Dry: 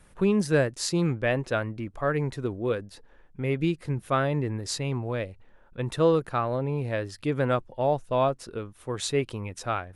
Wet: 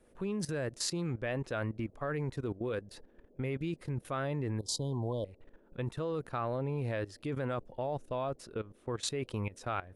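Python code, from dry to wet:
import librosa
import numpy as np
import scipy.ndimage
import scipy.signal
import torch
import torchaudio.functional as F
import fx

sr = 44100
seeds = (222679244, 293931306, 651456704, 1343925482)

y = fx.high_shelf(x, sr, hz=8700.0, db=-10.5, at=(8.53, 9.05))
y = fx.level_steps(y, sr, step_db=17)
y = fx.dmg_noise_band(y, sr, seeds[0], low_hz=190.0, high_hz=570.0, level_db=-66.0)
y = fx.brickwall_bandstop(y, sr, low_hz=1100.0, high_hz=3000.0, at=(4.59, 5.25))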